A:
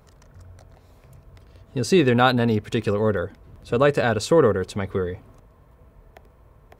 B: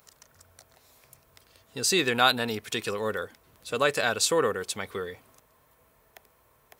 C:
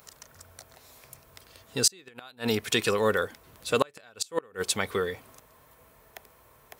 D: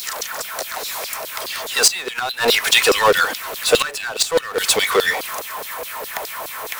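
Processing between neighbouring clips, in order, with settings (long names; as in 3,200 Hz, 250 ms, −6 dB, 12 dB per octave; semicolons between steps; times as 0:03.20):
spectral tilt +4 dB per octave; level −4 dB
gate with flip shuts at −14 dBFS, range −33 dB; level +5.5 dB
auto-filter high-pass saw down 4.8 Hz 410–4,700 Hz; power curve on the samples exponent 0.5; level +1.5 dB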